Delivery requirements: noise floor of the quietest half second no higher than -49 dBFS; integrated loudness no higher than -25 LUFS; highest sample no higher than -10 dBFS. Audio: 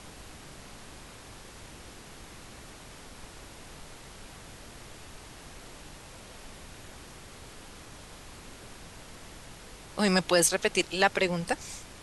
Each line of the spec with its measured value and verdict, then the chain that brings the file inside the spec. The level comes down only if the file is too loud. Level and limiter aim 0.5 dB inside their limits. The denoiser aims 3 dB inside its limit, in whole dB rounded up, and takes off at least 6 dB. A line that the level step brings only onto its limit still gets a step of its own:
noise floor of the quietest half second -47 dBFS: fail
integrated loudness -26.5 LUFS: OK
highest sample -8.0 dBFS: fail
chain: denoiser 6 dB, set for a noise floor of -47 dBFS; limiter -10.5 dBFS

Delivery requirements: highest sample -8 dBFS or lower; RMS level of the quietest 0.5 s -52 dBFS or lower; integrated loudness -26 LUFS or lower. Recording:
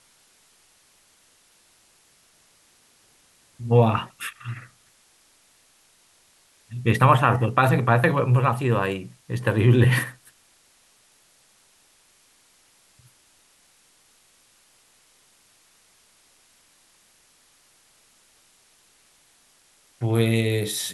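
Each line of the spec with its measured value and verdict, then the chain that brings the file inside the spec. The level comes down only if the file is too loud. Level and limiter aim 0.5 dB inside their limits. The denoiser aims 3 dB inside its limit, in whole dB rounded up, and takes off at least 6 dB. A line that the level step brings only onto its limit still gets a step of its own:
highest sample -4.0 dBFS: fail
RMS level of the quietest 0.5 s -60 dBFS: OK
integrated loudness -21.5 LUFS: fail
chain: gain -5 dB

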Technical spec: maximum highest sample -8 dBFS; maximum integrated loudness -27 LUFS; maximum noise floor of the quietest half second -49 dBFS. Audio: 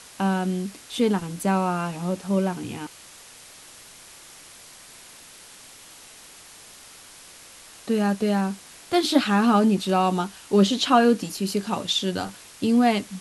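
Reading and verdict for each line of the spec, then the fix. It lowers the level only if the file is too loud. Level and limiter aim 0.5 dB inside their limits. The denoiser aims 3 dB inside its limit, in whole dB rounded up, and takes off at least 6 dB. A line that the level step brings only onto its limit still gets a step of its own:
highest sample -5.0 dBFS: fail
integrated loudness -23.0 LUFS: fail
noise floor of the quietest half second -47 dBFS: fail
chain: gain -4.5 dB

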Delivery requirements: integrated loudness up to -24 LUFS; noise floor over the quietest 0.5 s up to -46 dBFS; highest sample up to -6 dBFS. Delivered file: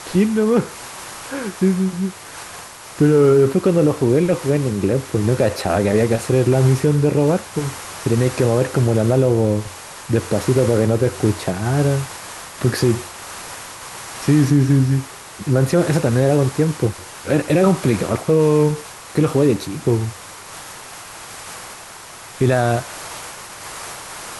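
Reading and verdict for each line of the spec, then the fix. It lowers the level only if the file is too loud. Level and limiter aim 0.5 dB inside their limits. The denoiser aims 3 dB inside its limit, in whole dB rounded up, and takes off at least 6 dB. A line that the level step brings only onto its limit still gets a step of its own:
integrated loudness -18.0 LUFS: fail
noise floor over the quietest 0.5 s -38 dBFS: fail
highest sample -4.5 dBFS: fail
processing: denoiser 6 dB, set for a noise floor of -38 dBFS; gain -6.5 dB

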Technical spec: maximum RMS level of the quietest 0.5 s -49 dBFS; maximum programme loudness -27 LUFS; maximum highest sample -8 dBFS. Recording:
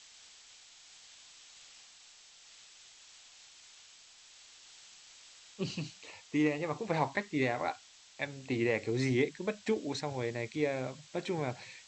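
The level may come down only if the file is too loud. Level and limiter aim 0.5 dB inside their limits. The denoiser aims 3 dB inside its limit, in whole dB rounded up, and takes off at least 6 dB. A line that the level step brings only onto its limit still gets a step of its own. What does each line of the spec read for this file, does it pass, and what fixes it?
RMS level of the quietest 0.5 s -58 dBFS: OK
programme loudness -34.5 LUFS: OK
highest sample -16.5 dBFS: OK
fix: none

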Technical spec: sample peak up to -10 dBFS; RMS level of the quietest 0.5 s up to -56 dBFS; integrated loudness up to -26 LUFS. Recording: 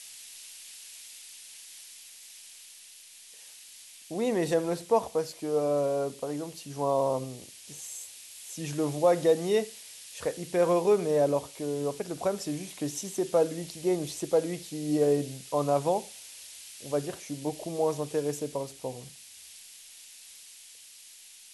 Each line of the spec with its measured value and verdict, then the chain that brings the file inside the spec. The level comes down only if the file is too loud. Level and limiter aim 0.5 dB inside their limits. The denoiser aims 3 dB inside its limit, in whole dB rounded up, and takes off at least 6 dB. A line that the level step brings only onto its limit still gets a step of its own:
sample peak -11.5 dBFS: OK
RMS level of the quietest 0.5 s -51 dBFS: fail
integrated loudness -29.5 LUFS: OK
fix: denoiser 8 dB, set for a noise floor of -51 dBFS

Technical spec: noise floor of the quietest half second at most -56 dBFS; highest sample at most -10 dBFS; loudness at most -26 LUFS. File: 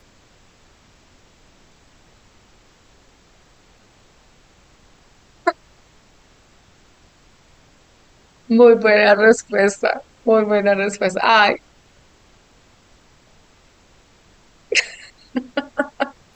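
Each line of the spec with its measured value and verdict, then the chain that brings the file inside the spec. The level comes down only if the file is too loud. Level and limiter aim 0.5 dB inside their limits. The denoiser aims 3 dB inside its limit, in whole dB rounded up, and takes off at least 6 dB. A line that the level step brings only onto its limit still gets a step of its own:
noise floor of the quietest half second -53 dBFS: fail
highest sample -2.0 dBFS: fail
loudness -16.5 LUFS: fail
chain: gain -10 dB

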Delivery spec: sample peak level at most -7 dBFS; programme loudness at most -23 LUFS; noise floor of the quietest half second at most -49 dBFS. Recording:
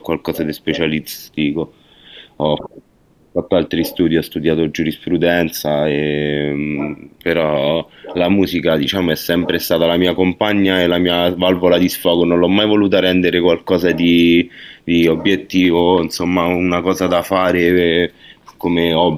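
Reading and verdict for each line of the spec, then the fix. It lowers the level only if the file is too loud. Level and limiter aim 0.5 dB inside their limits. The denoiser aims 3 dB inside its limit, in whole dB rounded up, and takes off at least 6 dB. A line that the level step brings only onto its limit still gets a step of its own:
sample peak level -1.5 dBFS: fail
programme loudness -15.5 LUFS: fail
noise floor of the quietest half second -53 dBFS: OK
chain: gain -8 dB

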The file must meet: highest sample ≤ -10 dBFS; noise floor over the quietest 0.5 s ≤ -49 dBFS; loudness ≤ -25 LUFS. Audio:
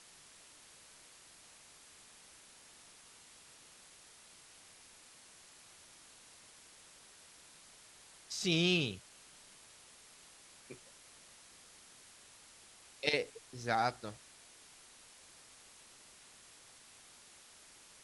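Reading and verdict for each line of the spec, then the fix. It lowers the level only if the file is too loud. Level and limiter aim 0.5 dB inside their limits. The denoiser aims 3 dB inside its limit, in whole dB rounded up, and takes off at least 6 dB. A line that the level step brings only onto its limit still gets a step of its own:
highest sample -16.0 dBFS: OK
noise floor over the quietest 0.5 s -59 dBFS: OK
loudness -34.5 LUFS: OK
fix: none

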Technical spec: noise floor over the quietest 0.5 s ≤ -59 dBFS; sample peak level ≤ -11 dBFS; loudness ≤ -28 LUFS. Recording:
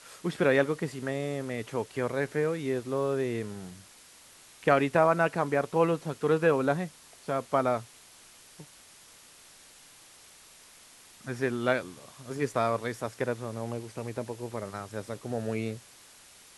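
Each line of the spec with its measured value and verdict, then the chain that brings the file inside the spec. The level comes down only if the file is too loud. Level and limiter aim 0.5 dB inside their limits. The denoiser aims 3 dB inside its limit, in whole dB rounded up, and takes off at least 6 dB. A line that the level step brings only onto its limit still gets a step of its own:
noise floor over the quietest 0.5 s -54 dBFS: fail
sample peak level -8.0 dBFS: fail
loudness -30.0 LUFS: OK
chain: denoiser 8 dB, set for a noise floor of -54 dBFS; limiter -11.5 dBFS

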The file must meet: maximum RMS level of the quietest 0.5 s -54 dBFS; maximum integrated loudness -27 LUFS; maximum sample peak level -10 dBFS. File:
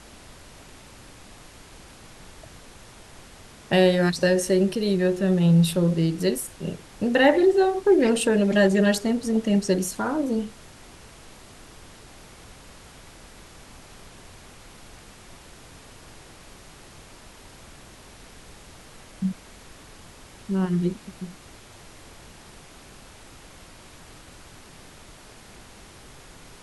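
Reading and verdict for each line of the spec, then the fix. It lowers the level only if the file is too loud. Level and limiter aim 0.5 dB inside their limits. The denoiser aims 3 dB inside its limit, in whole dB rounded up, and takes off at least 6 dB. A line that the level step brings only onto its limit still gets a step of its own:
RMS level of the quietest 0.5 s -47 dBFS: fail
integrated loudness -22.0 LUFS: fail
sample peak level -6.0 dBFS: fail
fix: denoiser 6 dB, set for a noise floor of -47 dBFS; gain -5.5 dB

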